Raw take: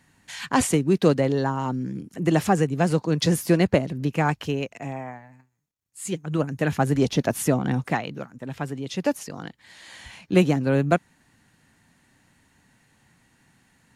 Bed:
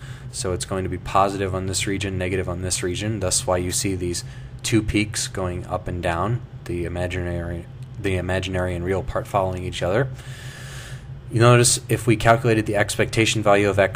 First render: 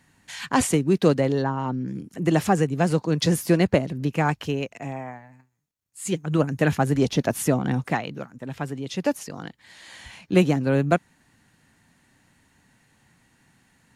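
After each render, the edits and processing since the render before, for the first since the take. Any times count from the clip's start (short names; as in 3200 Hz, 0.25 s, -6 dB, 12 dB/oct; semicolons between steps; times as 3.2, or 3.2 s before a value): 1.42–1.88 air absorption 140 m; 6.06–6.75 gain +3 dB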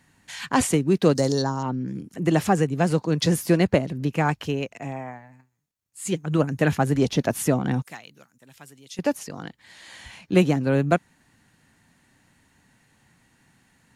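1.15–1.63 resonant high shelf 3800 Hz +13 dB, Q 3; 7.82–8.99 pre-emphasis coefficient 0.9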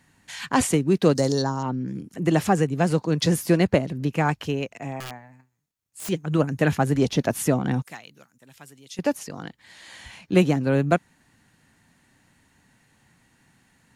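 5–6.09 wrapped overs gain 28.5 dB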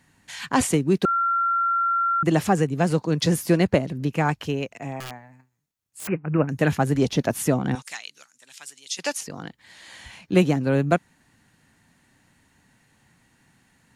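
1.05–2.23 bleep 1370 Hz -19 dBFS; 6.07–6.49 careless resampling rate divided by 8×, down none, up filtered; 7.75–9.21 weighting filter ITU-R 468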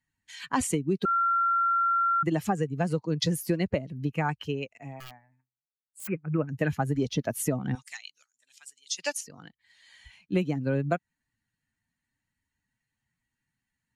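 per-bin expansion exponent 1.5; compressor 4:1, threshold -23 dBFS, peak gain reduction 9.5 dB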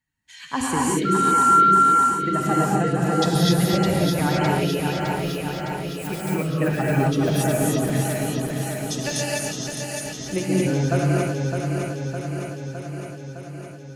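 regenerating reverse delay 0.305 s, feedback 81%, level -4.5 dB; non-linear reverb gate 0.3 s rising, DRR -4.5 dB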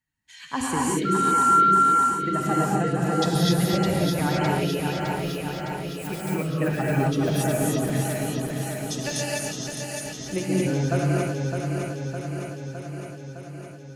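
gain -2.5 dB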